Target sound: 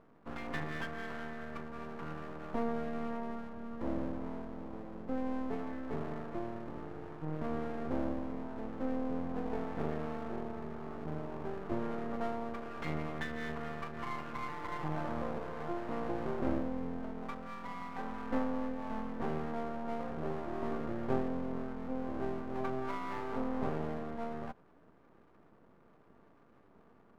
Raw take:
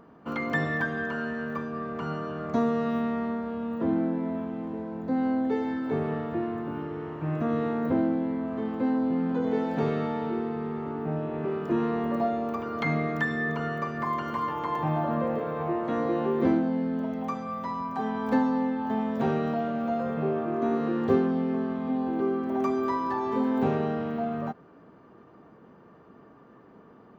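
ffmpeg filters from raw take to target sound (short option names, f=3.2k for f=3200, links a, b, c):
-af "lowpass=1.8k,aeval=exprs='max(val(0),0)':c=same,volume=-6dB"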